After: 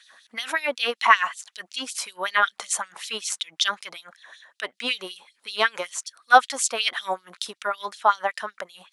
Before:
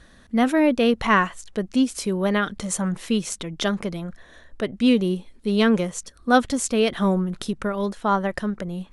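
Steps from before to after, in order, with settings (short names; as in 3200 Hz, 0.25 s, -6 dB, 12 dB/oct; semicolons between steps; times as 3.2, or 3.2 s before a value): LFO high-pass sine 5.3 Hz 780–4300 Hz; gain +1 dB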